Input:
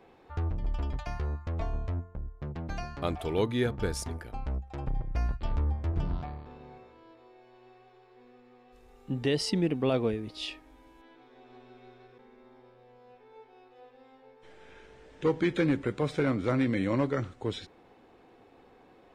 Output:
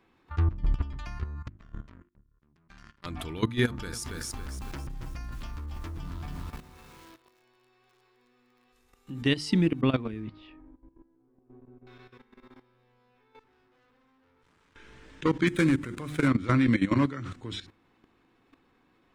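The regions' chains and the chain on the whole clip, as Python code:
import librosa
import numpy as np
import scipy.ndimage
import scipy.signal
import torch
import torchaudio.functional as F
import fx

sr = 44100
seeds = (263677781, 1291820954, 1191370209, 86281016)

y = fx.chain(x, sr, fx.comb(ms=5.1, depth=0.89),
    fx.power_curve(exponent=3.0),
    fx.sustainer(db_per_s=40.0), at=(1.48, 3.06))
y = fx.chain(y, sr, fx.bass_treble(bass_db=-5, treble_db=6),
    fx.echo_crushed(ms=278, feedback_pct=35, bits=9, wet_db=-4), at=(3.65, 9.22))
y = fx.chain(y, sr, fx.high_shelf(hz=4800.0, db=-9.0),
    fx.env_lowpass(base_hz=390.0, full_db=-25.5), at=(9.81, 11.87))
y = fx.chain(y, sr, fx.peak_eq(hz=2700.0, db=-8.5, octaves=1.9),
    fx.tube_stage(drive_db=61.0, bias=0.65), at=(13.39, 14.76))
y = fx.chain(y, sr, fx.median_filter(points=9),
    fx.peak_eq(hz=8600.0, db=8.5, octaves=0.83), at=(15.47, 16.28))
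y = fx.chain(y, sr, fx.highpass(hz=98.0, slope=24),
    fx.sustainer(db_per_s=120.0), at=(16.93, 17.36))
y = fx.band_shelf(y, sr, hz=580.0, db=-10.0, octaves=1.3)
y = fx.hum_notches(y, sr, base_hz=50, count=7)
y = fx.level_steps(y, sr, step_db=15)
y = F.gain(torch.from_numpy(y), 8.5).numpy()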